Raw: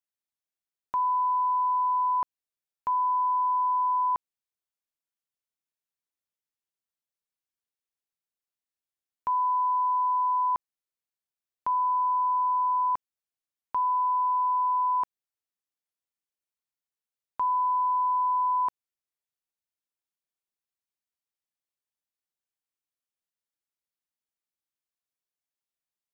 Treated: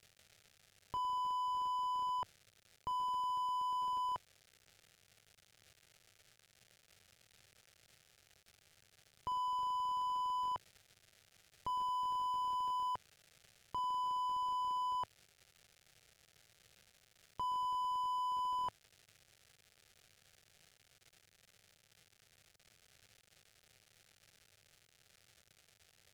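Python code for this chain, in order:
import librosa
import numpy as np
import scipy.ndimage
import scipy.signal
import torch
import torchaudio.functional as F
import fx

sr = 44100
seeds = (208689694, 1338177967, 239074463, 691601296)

y = fx.dmg_crackle(x, sr, seeds[0], per_s=260.0, level_db=-43.0)
y = fx.graphic_eq_15(y, sr, hz=(100, 250, 1000), db=(5, -8, -7))
y = fx.slew_limit(y, sr, full_power_hz=13.0)
y = y * librosa.db_to_amplitude(1.5)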